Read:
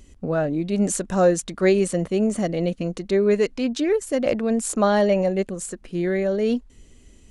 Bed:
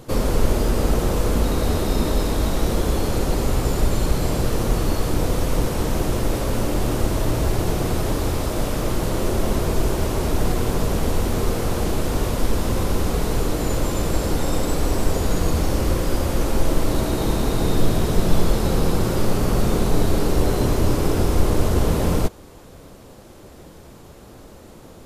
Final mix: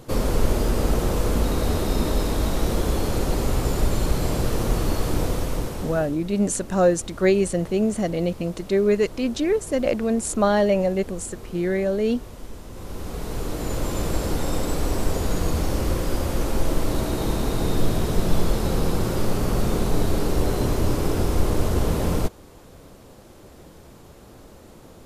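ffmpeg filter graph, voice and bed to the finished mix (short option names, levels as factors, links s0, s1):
-filter_complex "[0:a]adelay=5600,volume=0.944[s0];[1:a]volume=4.47,afade=t=out:st=5.17:d=1:silence=0.158489,afade=t=in:st=12.71:d=1.29:silence=0.177828[s1];[s0][s1]amix=inputs=2:normalize=0"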